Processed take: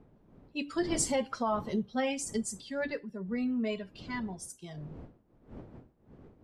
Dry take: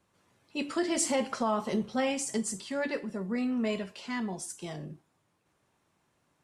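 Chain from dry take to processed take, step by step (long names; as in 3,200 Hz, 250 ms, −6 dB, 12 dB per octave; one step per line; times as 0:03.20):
spectral dynamics exaggerated over time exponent 1.5
wind on the microphone 310 Hz −50 dBFS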